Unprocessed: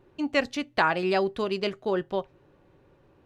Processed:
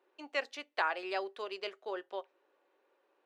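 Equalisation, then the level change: HPF 380 Hz 24 dB/oct; LPF 2300 Hz 6 dB/oct; tilt +2.5 dB/oct; -8.0 dB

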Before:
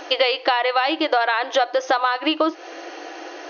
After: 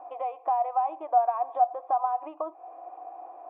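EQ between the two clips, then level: vocal tract filter a; low shelf 450 Hz +4 dB; 0.0 dB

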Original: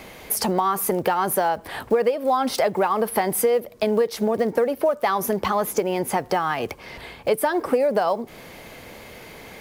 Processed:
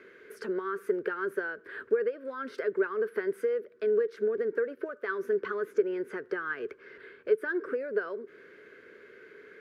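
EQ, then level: double band-pass 790 Hz, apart 1.9 oct; 0.0 dB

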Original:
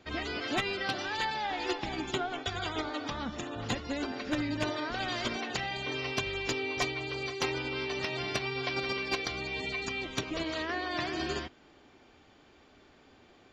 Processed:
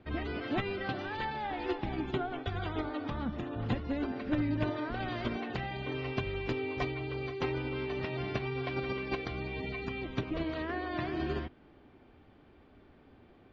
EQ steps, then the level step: air absorption 310 m; low shelf 330 Hz +8.5 dB; -2.5 dB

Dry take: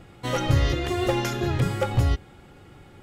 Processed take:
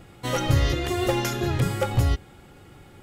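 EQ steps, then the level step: high shelf 8000 Hz +8.5 dB; 0.0 dB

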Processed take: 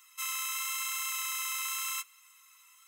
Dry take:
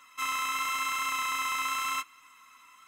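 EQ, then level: pre-emphasis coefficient 0.97; notches 60/120/180/240/300/360/420/480/540 Hz; +4.0 dB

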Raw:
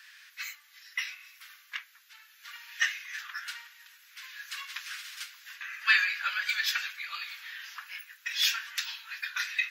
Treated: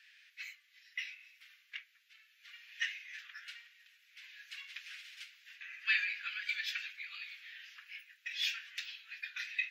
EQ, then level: ladder high-pass 1900 Hz, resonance 35%; high shelf 3200 Hz -9.5 dB; high shelf 7400 Hz -6.5 dB; +2.5 dB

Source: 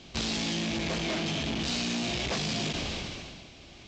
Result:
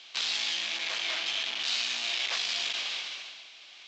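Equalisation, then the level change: HPF 1300 Hz 12 dB/oct; air absorption 59 m; bell 3500 Hz +3.5 dB 0.73 oct; +3.0 dB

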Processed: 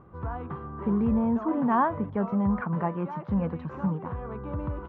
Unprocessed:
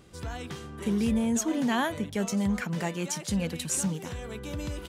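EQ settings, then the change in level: synth low-pass 1100 Hz, resonance Q 3.7; air absorption 240 m; bell 110 Hz +4.5 dB 1.5 oct; 0.0 dB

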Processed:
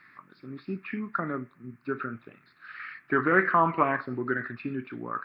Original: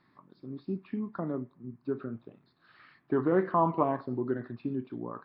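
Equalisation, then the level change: band shelf 1800 Hz +16 dB 1.3 oct; high shelf 3600 Hz +10.5 dB; 0.0 dB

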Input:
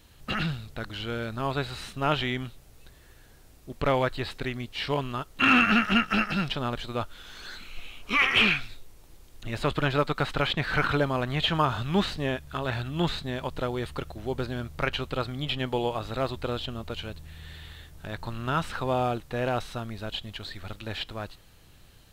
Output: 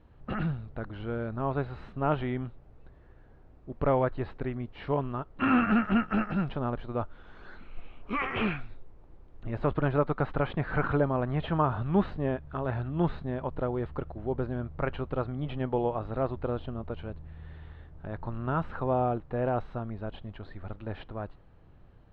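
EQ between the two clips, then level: LPF 1100 Hz 12 dB/oct; 0.0 dB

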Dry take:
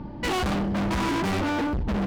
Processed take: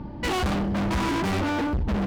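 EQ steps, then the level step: bell 73 Hz +4 dB 0.77 oct; 0.0 dB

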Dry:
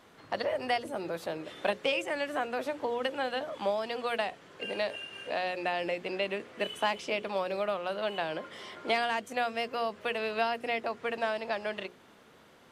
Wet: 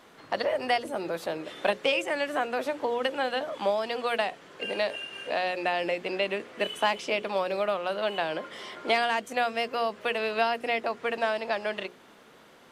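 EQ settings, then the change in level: bell 80 Hz -7.5 dB 1.7 oct; +4.0 dB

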